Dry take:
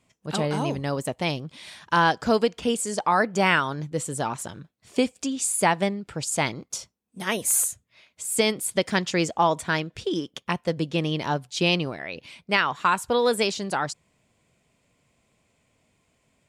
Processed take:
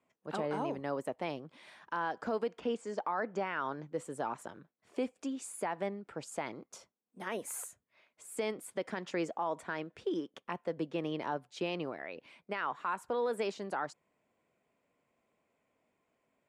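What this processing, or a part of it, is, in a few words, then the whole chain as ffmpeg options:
DJ mixer with the lows and highs turned down: -filter_complex "[0:a]acrossover=split=230 2100:gain=0.158 1 0.2[a][b][c];[a][b][c]amix=inputs=3:normalize=0,alimiter=limit=-18.5dB:level=0:latency=1:release=72,asettb=1/sr,asplit=3[d][e][f];[d]atrim=end=2.604[g];[e]atrim=start=2.6:end=3.94,asetpts=PTS-STARTPTS,afade=t=in:d=0.004:c=qsin,afade=t=out:st=1.336:d=0.004:c=qsin,lowpass=f=6.6k:w=0.5412,lowpass=f=6.6k:w=1.3066[h];[f]atrim=start=3.936[i];[g][h]acrossfade=d=0.004:c1=hsin:c2=qsin[j];[j][i]acrossfade=d=0.004:c1=qsin:c2=hsin,volume=-6dB"

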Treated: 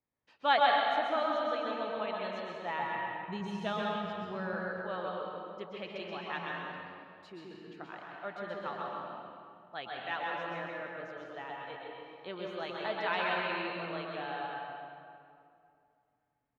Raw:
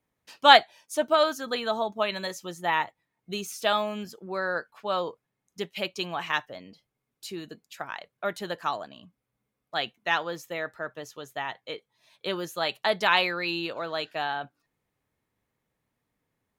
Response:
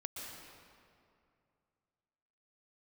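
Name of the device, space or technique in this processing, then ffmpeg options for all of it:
stairwell: -filter_complex "[0:a]lowpass=2.8k,asettb=1/sr,asplit=3[a][b][c];[a]atrim=end=2.824[d];[b]atrim=start=2.82:end=4.54,asetpts=PTS-STARTPTS,afade=t=in:d=0.004:c=qsin,afade=t=out:st=1.716:d=0.004:c=qsin,bass=f=250:g=13,treble=f=4k:g=3[e];[c]atrim=start=4.536[f];[d][e]acrossfade=d=0.004:c1=hsin:c2=qsin[g];[g][f]acrossfade=d=0.004:c1=qsin:c2=hsin[h];[1:a]atrim=start_sample=2205[i];[h][i]afir=irnorm=-1:irlink=0,aecho=1:1:131:0.596,volume=-7dB"

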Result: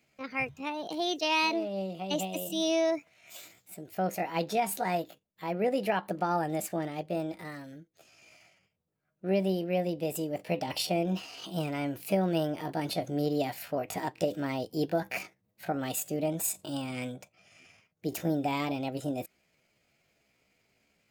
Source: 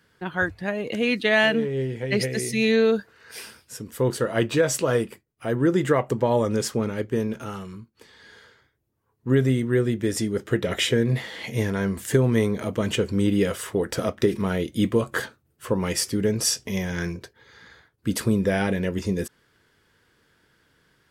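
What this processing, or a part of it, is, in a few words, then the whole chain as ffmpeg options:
chipmunk voice: -af "asetrate=64194,aresample=44100,atempo=0.686977,volume=-8dB"

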